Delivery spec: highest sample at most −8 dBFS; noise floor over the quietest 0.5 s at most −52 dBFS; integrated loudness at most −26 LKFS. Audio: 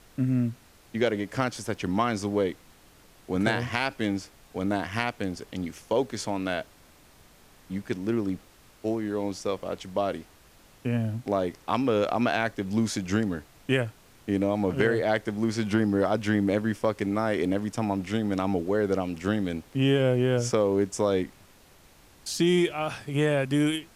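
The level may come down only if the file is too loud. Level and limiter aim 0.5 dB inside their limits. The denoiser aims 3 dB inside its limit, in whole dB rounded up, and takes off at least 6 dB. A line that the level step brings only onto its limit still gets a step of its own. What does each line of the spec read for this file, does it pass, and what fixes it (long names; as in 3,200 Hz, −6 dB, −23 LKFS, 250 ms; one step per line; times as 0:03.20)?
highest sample −9.5 dBFS: in spec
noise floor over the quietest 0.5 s −55 dBFS: in spec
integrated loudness −27.5 LKFS: in spec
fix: no processing needed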